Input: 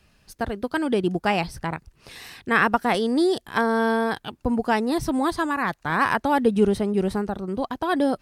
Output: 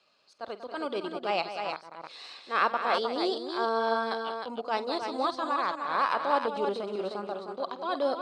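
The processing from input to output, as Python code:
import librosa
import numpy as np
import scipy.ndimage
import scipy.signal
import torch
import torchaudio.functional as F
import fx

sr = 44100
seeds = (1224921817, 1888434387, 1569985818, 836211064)

p1 = fx.transient(x, sr, attack_db=-10, sustain_db=-6)
p2 = fx.cabinet(p1, sr, low_hz=460.0, low_slope=12, high_hz=6800.0, hz=(570.0, 1200.0, 1800.0, 4200.0, 5900.0), db=(6, 6, -8, 9, -5))
p3 = p2 + fx.echo_multitap(p2, sr, ms=(49, 189, 309), db=(-16.0, -10.5, -6.0), dry=0)
y = p3 * 10.0 ** (-4.5 / 20.0)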